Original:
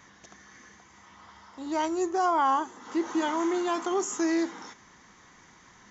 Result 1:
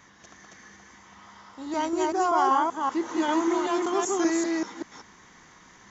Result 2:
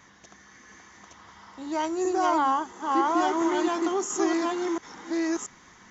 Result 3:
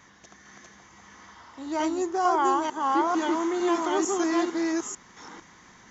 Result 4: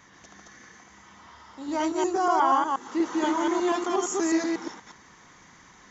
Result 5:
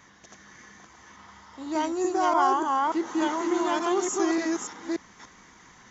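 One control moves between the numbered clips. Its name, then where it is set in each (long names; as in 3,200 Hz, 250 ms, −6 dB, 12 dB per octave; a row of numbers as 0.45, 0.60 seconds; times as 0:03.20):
delay that plays each chunk backwards, delay time: 193, 683, 450, 120, 292 milliseconds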